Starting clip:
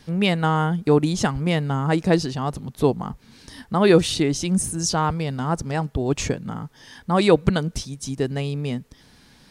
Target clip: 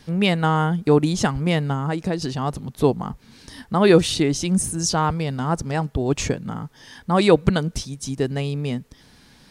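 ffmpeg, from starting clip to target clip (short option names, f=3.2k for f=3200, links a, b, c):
-filter_complex "[0:a]asettb=1/sr,asplit=3[a][b][c];[a]atrim=end=1.724[d];[b]atrim=start=1.72:end=2.22,asetpts=PTS-STARTPTS,afade=t=in:d=0.004:c=qsin,afade=t=out:st=0.496:d=0.004:c=qsin,acompressor=threshold=-21dB:ratio=6[e];[c]atrim=start=2.216[f];[d][e]acrossfade=d=0.004:c1=hsin:c2=qsin[g];[g][f]acrossfade=d=0.004:c1=qsin:c2=hsin,volume=1dB"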